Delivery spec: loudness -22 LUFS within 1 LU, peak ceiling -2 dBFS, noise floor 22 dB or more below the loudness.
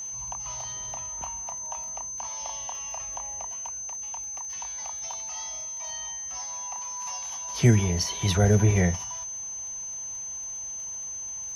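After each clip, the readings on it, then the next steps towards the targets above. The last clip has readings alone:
ticks 21/s; steady tone 6200 Hz; tone level -33 dBFS; loudness -29.0 LUFS; peak -9.0 dBFS; loudness target -22.0 LUFS
-> de-click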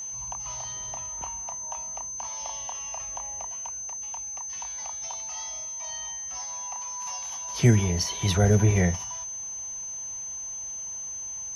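ticks 0.087/s; steady tone 6200 Hz; tone level -33 dBFS
-> notch 6200 Hz, Q 30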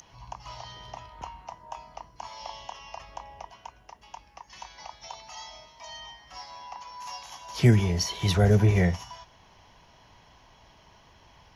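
steady tone none; loudness -25.0 LUFS; peak -9.0 dBFS; loudness target -22.0 LUFS
-> gain +3 dB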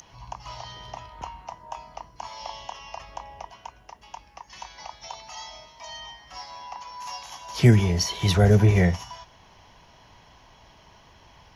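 loudness -22.0 LUFS; peak -6.0 dBFS; noise floor -54 dBFS

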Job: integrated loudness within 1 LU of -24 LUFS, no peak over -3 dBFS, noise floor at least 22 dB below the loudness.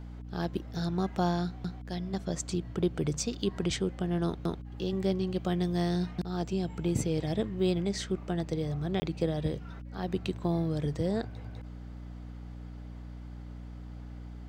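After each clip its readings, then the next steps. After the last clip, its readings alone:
dropouts 1; longest dropout 20 ms; hum 60 Hz; harmonics up to 300 Hz; hum level -41 dBFS; loudness -32.0 LUFS; peak -16.0 dBFS; loudness target -24.0 LUFS
-> interpolate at 9, 20 ms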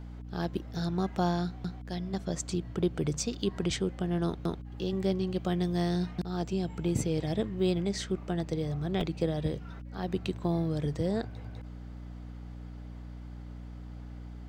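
dropouts 0; hum 60 Hz; harmonics up to 300 Hz; hum level -41 dBFS
-> de-hum 60 Hz, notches 5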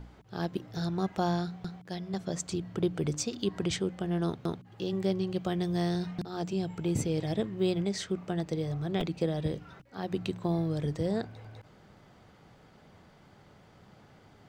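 hum none; loudness -32.5 LUFS; peak -17.0 dBFS; loudness target -24.0 LUFS
-> gain +8.5 dB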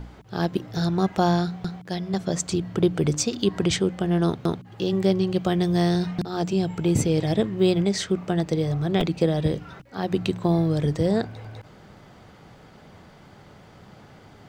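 loudness -24.0 LUFS; peak -8.5 dBFS; noise floor -50 dBFS

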